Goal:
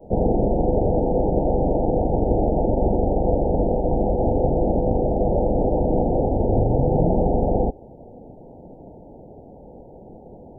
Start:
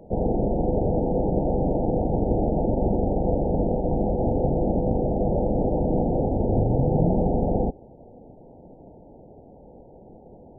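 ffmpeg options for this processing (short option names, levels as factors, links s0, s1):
-af "adynamicequalizer=threshold=0.0178:dfrequency=170:dqfactor=0.91:tfrequency=170:tqfactor=0.91:attack=5:release=100:ratio=0.375:range=2.5:mode=cutabove:tftype=bell,volume=1.68"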